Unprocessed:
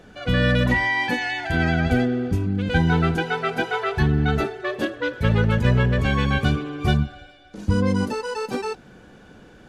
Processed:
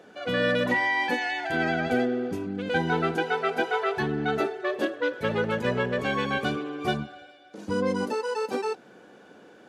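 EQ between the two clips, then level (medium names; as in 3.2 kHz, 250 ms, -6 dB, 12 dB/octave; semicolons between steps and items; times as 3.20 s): high-pass 400 Hz 12 dB/octave; tilt shelf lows +4.5 dB, about 690 Hz; 0.0 dB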